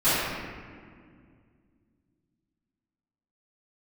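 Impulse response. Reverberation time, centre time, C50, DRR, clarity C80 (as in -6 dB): 2.1 s, 133 ms, -4.0 dB, -19.0 dB, -1.0 dB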